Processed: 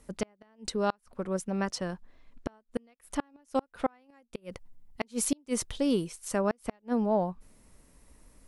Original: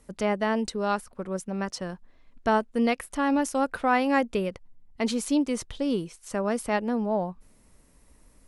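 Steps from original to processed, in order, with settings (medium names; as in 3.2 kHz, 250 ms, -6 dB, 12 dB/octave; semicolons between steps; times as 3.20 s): 4.09–6.38 s: treble shelf 8.4 kHz +9.5 dB; inverted gate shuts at -16 dBFS, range -37 dB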